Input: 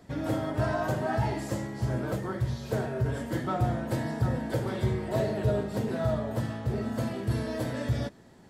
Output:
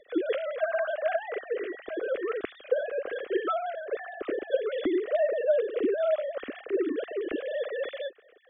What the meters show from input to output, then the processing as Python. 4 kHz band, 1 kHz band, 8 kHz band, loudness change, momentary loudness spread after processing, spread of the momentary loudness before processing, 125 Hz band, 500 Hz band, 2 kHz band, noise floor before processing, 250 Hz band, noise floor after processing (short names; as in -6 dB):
-1.0 dB, -2.0 dB, under -30 dB, +0.5 dB, 9 LU, 4 LU, under -35 dB, +5.5 dB, +2.5 dB, -52 dBFS, -3.5 dB, -56 dBFS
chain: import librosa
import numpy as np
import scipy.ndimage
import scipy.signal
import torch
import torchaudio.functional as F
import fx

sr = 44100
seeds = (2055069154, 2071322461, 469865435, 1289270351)

y = fx.sine_speech(x, sr)
y = fx.fixed_phaser(y, sr, hz=380.0, stages=4)
y = y * librosa.db_to_amplitude(3.5)